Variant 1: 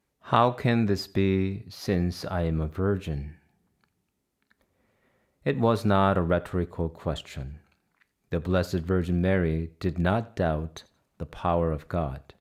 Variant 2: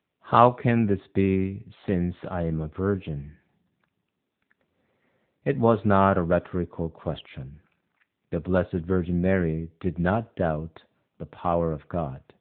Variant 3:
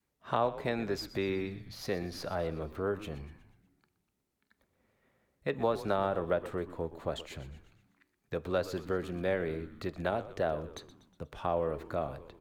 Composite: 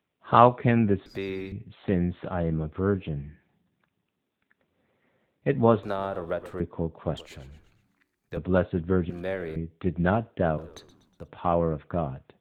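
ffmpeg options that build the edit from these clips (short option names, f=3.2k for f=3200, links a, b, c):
-filter_complex "[2:a]asplit=5[a][b][c][d][e];[1:a]asplit=6[f][g][h][i][j][k];[f]atrim=end=1.062[l];[a]atrim=start=1.058:end=1.522[m];[g]atrim=start=1.518:end=5.832[n];[b]atrim=start=5.828:end=6.602[o];[h]atrim=start=6.598:end=7.172[p];[c]atrim=start=7.168:end=8.372[q];[i]atrim=start=8.368:end=9.102[r];[d]atrim=start=9.098:end=9.562[s];[j]atrim=start=9.558:end=10.582[t];[e]atrim=start=10.578:end=11.282[u];[k]atrim=start=11.278[v];[l][m]acrossfade=d=0.004:c1=hsin:c2=hsin[w];[w][n]acrossfade=d=0.004:c1=hsin:c2=hsin[x];[x][o]acrossfade=d=0.004:c1=hsin:c2=hsin[y];[y][p]acrossfade=d=0.004:c1=hsin:c2=hsin[z];[z][q]acrossfade=d=0.004:c1=hsin:c2=hsin[aa];[aa][r]acrossfade=d=0.004:c1=hsin:c2=hsin[ab];[ab][s]acrossfade=d=0.004:c1=hsin:c2=hsin[ac];[ac][t]acrossfade=d=0.004:c1=hsin:c2=hsin[ad];[ad][u]acrossfade=d=0.004:c1=hsin:c2=hsin[ae];[ae][v]acrossfade=d=0.004:c1=hsin:c2=hsin"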